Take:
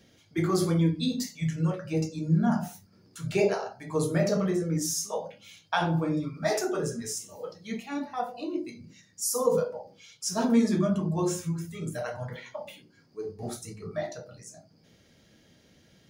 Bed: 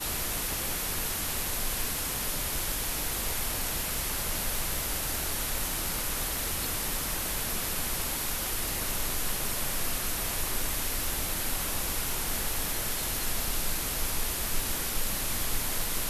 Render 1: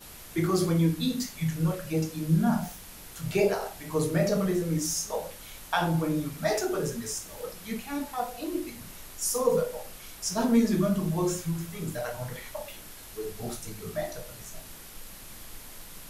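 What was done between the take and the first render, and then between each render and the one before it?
add bed -14.5 dB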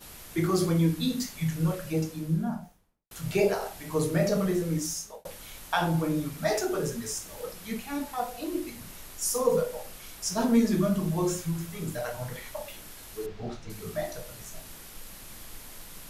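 1.82–3.11 s: studio fade out; 4.56–5.25 s: fade out equal-power; 13.26–13.70 s: distance through air 180 m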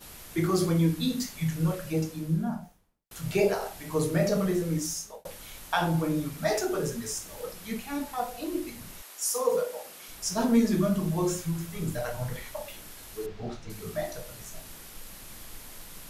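9.01–10.08 s: high-pass 580 Hz -> 230 Hz; 11.76–12.44 s: bass shelf 130 Hz +7.5 dB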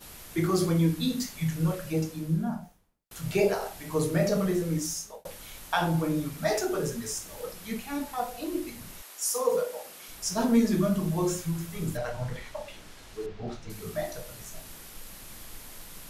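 11.97–13.48 s: distance through air 58 m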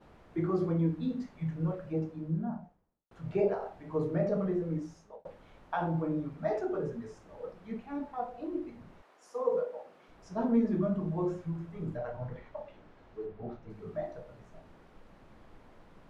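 Bessel low-pass 680 Hz, order 2; tilt EQ +2 dB/octave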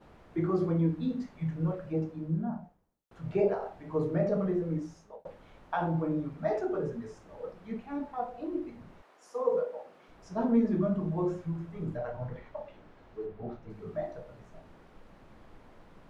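trim +1.5 dB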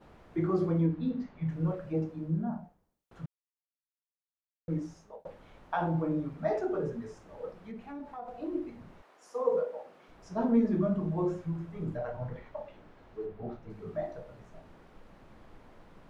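0.86–1.49 s: distance through air 150 m; 3.26–4.68 s: mute; 7.64–8.28 s: compression 3:1, threshold -40 dBFS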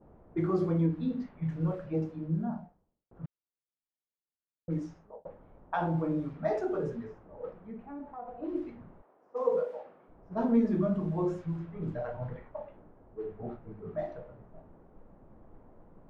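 level-controlled noise filter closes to 630 Hz, open at -28 dBFS

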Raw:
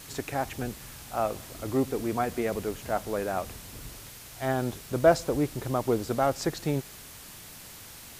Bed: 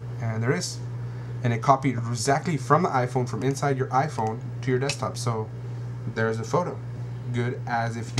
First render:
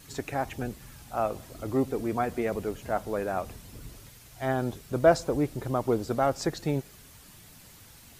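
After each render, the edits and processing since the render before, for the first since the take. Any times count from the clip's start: noise reduction 8 dB, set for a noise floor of -46 dBFS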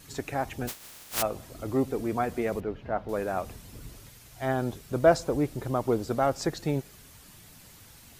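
0.67–1.21 s: spectral contrast reduction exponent 0.11; 2.60–3.09 s: distance through air 310 m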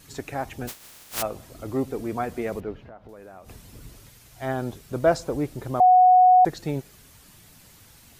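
2.80–3.49 s: compression 5:1, threshold -42 dBFS; 5.80–6.45 s: bleep 735 Hz -11 dBFS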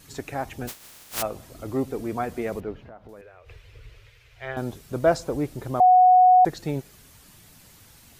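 3.21–4.57 s: FFT filter 110 Hz 0 dB, 210 Hz -30 dB, 460 Hz +1 dB, 750 Hz -10 dB, 2.4 kHz +5 dB, 9.6 kHz -20 dB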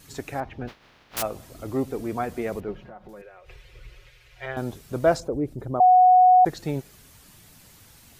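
0.40–1.17 s: distance through air 280 m; 2.68–4.46 s: comb 5.5 ms, depth 72%; 5.20–6.46 s: resonances exaggerated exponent 1.5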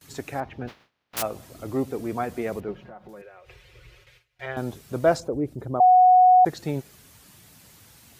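high-pass 66 Hz 12 dB/octave; gate with hold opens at -42 dBFS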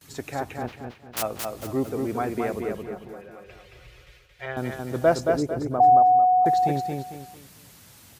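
feedback delay 224 ms, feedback 34%, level -4 dB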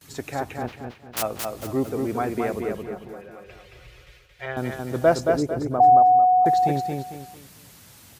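trim +1.5 dB

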